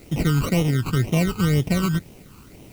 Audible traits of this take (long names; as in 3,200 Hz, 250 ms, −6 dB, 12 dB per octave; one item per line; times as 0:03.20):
aliases and images of a low sample rate 1,700 Hz, jitter 0%
phaser sweep stages 12, 2 Hz, lowest notch 600–1,500 Hz
a quantiser's noise floor 10 bits, dither triangular